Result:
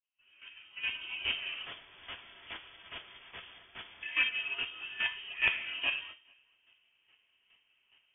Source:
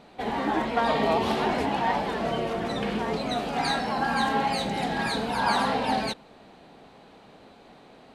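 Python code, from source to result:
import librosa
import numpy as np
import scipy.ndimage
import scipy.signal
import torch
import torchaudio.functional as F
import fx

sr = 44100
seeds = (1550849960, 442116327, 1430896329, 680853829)

y = fx.fade_in_head(x, sr, length_s=1.56)
y = scipy.signal.sosfilt(scipy.signal.butter(2, 300.0, 'highpass', fs=sr, output='sos'), y)
y = fx.hum_notches(y, sr, base_hz=50, count=9)
y = fx.overflow_wrap(y, sr, gain_db=28.5, at=(1.64, 4.03))
y = fx.chopper(y, sr, hz=2.4, depth_pct=65, duty_pct=15)
y = (np.mod(10.0 ** (12.5 / 20.0) * y + 1.0, 2.0) - 1.0) / 10.0 ** (12.5 / 20.0)
y = fx.air_absorb(y, sr, metres=260.0)
y = y + 10.0 ** (-23.0 / 20.0) * np.pad(y, (int(437 * sr / 1000.0), 0))[:len(y)]
y = fx.rev_fdn(y, sr, rt60_s=0.48, lf_ratio=1.5, hf_ratio=0.6, size_ms=39.0, drr_db=3.5)
y = fx.freq_invert(y, sr, carrier_hz=3400)
y = fx.upward_expand(y, sr, threshold_db=-48.0, expansion=1.5)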